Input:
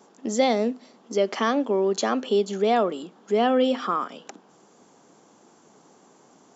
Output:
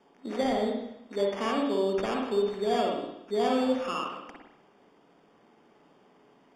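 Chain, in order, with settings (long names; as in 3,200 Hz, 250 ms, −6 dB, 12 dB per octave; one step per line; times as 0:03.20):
decimation without filtering 11×
high-frequency loss of the air 87 metres
convolution reverb RT60 0.85 s, pre-delay 50 ms, DRR −1 dB
level −8.5 dB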